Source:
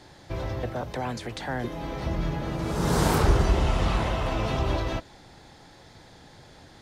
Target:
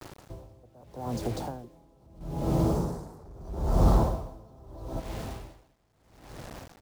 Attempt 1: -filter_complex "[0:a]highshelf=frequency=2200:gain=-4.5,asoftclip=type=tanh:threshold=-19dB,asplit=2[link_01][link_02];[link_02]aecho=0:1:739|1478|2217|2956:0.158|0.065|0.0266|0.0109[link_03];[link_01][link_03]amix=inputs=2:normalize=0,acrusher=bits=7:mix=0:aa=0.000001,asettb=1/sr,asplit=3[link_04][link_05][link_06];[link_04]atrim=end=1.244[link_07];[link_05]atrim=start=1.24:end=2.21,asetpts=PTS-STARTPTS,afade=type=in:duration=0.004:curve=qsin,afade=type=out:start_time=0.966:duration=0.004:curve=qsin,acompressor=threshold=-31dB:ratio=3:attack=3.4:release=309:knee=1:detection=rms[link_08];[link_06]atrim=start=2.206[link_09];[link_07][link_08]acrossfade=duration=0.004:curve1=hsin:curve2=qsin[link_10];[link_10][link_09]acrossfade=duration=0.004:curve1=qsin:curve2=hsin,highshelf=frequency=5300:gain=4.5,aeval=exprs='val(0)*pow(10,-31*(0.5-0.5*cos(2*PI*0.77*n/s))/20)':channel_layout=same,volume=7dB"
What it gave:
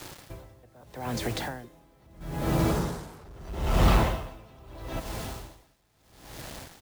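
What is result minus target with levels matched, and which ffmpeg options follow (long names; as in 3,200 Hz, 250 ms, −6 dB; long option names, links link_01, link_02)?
2,000 Hz band +12.5 dB; 8,000 Hz band +6.0 dB
-filter_complex "[0:a]asuperstop=centerf=2300:order=4:qfactor=0.54,highshelf=frequency=2200:gain=-4.5,asoftclip=type=tanh:threshold=-19dB,asplit=2[link_01][link_02];[link_02]aecho=0:1:739|1478|2217|2956:0.158|0.065|0.0266|0.0109[link_03];[link_01][link_03]amix=inputs=2:normalize=0,acrusher=bits=7:mix=0:aa=0.000001,asettb=1/sr,asplit=3[link_04][link_05][link_06];[link_04]atrim=end=1.244[link_07];[link_05]atrim=start=1.24:end=2.21,asetpts=PTS-STARTPTS,afade=type=in:duration=0.004:curve=qsin,afade=type=out:start_time=0.966:duration=0.004:curve=qsin,acompressor=threshold=-31dB:ratio=3:attack=3.4:release=309:knee=1:detection=rms[link_08];[link_06]atrim=start=2.206[link_09];[link_07][link_08]acrossfade=duration=0.004:curve1=hsin:curve2=qsin[link_10];[link_10][link_09]acrossfade=duration=0.004:curve1=qsin:curve2=hsin,highshelf=frequency=5300:gain=-4,aeval=exprs='val(0)*pow(10,-31*(0.5-0.5*cos(2*PI*0.77*n/s))/20)':channel_layout=same,volume=7dB"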